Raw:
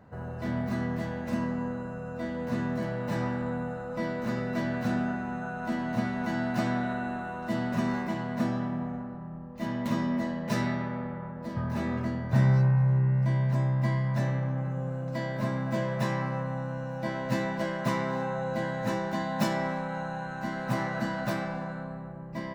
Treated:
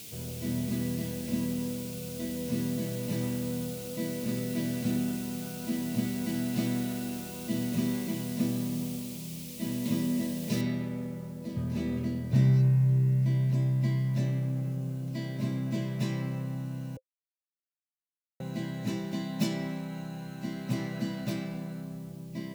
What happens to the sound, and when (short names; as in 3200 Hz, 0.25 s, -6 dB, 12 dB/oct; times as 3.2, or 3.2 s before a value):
10.61 noise floor step -45 dB -62 dB
16.97–18.4 mute
whole clip: HPF 73 Hz; band shelf 1100 Hz -14 dB; notch 520 Hz, Q 15